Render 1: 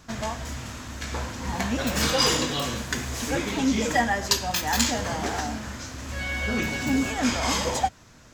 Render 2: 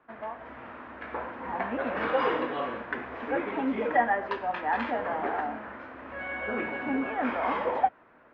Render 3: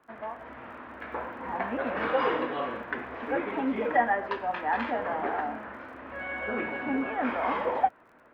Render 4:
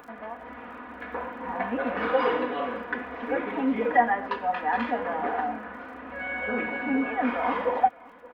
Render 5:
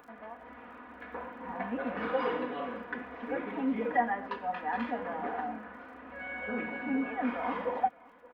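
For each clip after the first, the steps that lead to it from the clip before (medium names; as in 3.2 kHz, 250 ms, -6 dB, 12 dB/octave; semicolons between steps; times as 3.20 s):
low-pass 3.1 kHz 24 dB/octave; three-band isolator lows -23 dB, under 290 Hz, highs -23 dB, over 2 kHz; level rider gain up to 6.5 dB; trim -5.5 dB
crackle 40 per s -52 dBFS
comb 4.1 ms, depth 63%; upward compressor, threshold -38 dBFS; delay 571 ms -22.5 dB
dynamic bell 170 Hz, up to +6 dB, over -45 dBFS, Q 1.3; trim -7.5 dB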